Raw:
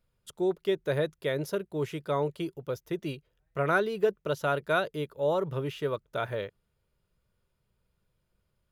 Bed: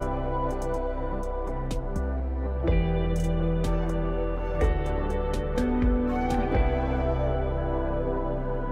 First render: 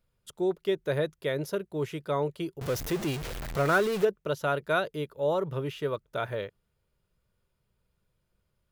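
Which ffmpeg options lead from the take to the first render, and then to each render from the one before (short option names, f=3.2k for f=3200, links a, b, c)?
-filter_complex "[0:a]asettb=1/sr,asplit=3[a][b][c];[a]atrim=end=2.614[d];[b]atrim=start=2.61:end=4.05,asetpts=PTS-STARTPTS,afade=t=in:d=0.004:c=qsin,afade=t=out:st=1.436:d=0.004:c=qsin,aeval=exprs='val(0)+0.5*0.0316*sgn(val(0))':c=same[e];[c]atrim=start=4.046[f];[d][e]acrossfade=d=0.004:c1=hsin:c2=qsin[g];[g][f]acrossfade=d=0.004:c1=qsin:c2=hsin"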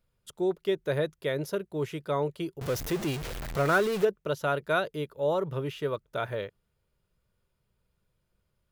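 -af anull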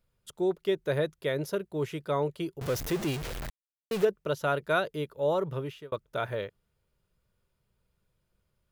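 -filter_complex "[0:a]asplit=4[a][b][c][d];[a]atrim=end=3.5,asetpts=PTS-STARTPTS,afade=t=out:st=3.496:d=0.004:c=hsin[e];[b]atrim=start=3.5:end=3.91,asetpts=PTS-STARTPTS,volume=0[f];[c]atrim=start=3.91:end=5.92,asetpts=PTS-STARTPTS,afade=t=in:d=0.004:c=hsin,afade=t=out:st=1.48:d=0.53:c=qsin[g];[d]atrim=start=5.92,asetpts=PTS-STARTPTS,afade=t=in:d=0.004:c=hsin[h];[e][f][g][h]concat=n=4:v=0:a=1"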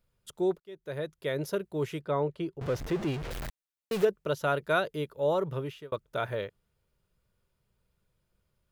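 -filter_complex "[0:a]asettb=1/sr,asplit=3[a][b][c];[a]atrim=end=2.014[d];[b]atrim=start=2.01:end=3.31,asetpts=PTS-STARTPTS,afade=t=in:d=0.004:c=qsin,afade=t=out:st=1.296:d=0.004:c=qsin,aemphasis=mode=reproduction:type=75kf[e];[c]atrim=start=3.306[f];[d][e]acrossfade=d=0.004:c1=hsin:c2=qsin[g];[g][f]acrossfade=d=0.004:c1=qsin:c2=hsin,asplit=2[h][i];[h]atrim=end=0.6,asetpts=PTS-STARTPTS,afade=t=out:st=0.596:d=0.004:c=hsin[j];[i]atrim=start=0.6,asetpts=PTS-STARTPTS,afade=t=in:d=0.86[k];[j][k]concat=n=2:v=0:a=1"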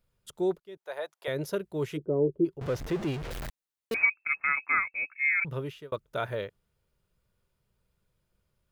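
-filter_complex "[0:a]asettb=1/sr,asplit=3[a][b][c];[a]atrim=end=0.774[d];[b]atrim=start=0.77:end=1.28,asetpts=PTS-STARTPTS,afade=t=in:d=0.004:c=qsin,afade=t=out:st=0.506:d=0.004:c=qsin,highpass=f=770:t=q:w=3[e];[c]atrim=start=1.276[f];[d][e]acrossfade=d=0.004:c1=hsin:c2=qsin[g];[g][f]acrossfade=d=0.004:c1=qsin:c2=hsin,asplit=3[h][i][j];[h]afade=t=out:st=1.96:d=0.02[k];[i]lowpass=f=370:t=q:w=3.6,afade=t=in:st=1.96:d=0.02,afade=t=out:st=2.44:d=0.02[l];[j]afade=t=in:st=2.44:d=0.02[m];[k][l][m]amix=inputs=3:normalize=0,asettb=1/sr,asplit=3[n][o][p];[n]atrim=end=3.944[q];[o]atrim=start=3.94:end=5.45,asetpts=PTS-STARTPTS,afade=t=in:d=0.004:c=qsin,afade=t=out:st=1.506:d=0.004:c=qsin,lowpass=f=2.3k:t=q:w=0.5098,lowpass=f=2.3k:t=q:w=0.6013,lowpass=f=2.3k:t=q:w=0.9,lowpass=f=2.3k:t=q:w=2.563,afreqshift=-2700[r];[p]atrim=start=5.446[s];[q][r]acrossfade=d=0.004:c1=hsin:c2=qsin[t];[t][s]acrossfade=d=0.004:c1=qsin:c2=hsin"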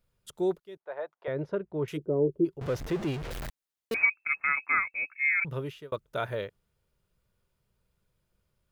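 -filter_complex "[0:a]asettb=1/sr,asplit=3[a][b][c];[a]atrim=end=0.774[d];[b]atrim=start=0.77:end=1.88,asetpts=PTS-STARTPTS,afade=t=in:d=0.004:c=qsin,afade=t=out:st=1.106:d=0.004:c=qsin,lowpass=1.6k[e];[c]atrim=start=1.876[f];[d][e]acrossfade=d=0.004:c1=hsin:c2=qsin[g];[g][f]acrossfade=d=0.004:c1=qsin:c2=hsin"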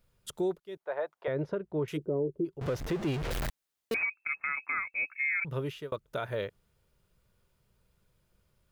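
-filter_complex "[0:a]asplit=2[a][b];[b]acompressor=threshold=-36dB:ratio=6,volume=-3dB[c];[a][c]amix=inputs=2:normalize=0,alimiter=limit=-23dB:level=0:latency=1:release=323"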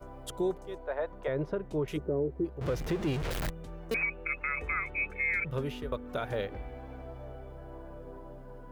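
-filter_complex "[1:a]volume=-18dB[a];[0:a][a]amix=inputs=2:normalize=0"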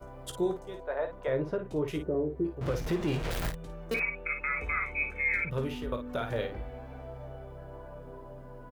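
-af "aecho=1:1:17|53:0.376|0.398"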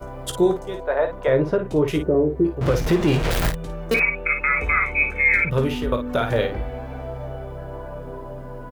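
-af "volume=11.5dB"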